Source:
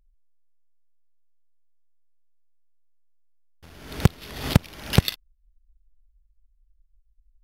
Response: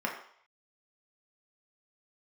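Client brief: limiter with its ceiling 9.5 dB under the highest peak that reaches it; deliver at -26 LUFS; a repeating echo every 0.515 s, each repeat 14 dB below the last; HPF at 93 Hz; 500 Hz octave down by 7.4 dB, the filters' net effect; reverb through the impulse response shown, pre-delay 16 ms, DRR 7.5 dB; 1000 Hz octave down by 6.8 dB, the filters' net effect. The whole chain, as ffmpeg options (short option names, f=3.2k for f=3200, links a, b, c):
-filter_complex "[0:a]highpass=93,equalizer=f=500:t=o:g=-8,equalizer=f=1k:t=o:g=-6.5,alimiter=limit=-11dB:level=0:latency=1,aecho=1:1:515|1030:0.2|0.0399,asplit=2[a][b];[1:a]atrim=start_sample=2205,adelay=16[c];[b][c]afir=irnorm=-1:irlink=0,volume=-15dB[d];[a][d]amix=inputs=2:normalize=0,volume=6.5dB"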